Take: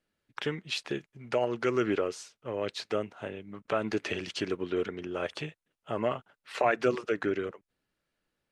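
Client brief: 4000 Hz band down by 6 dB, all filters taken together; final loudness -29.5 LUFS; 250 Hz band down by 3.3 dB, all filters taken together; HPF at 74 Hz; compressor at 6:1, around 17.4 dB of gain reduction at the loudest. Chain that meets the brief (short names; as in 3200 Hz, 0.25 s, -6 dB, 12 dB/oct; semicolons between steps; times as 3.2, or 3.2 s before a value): HPF 74 Hz; bell 250 Hz -5 dB; bell 4000 Hz -8 dB; compressor 6:1, threshold -42 dBFS; gain +17.5 dB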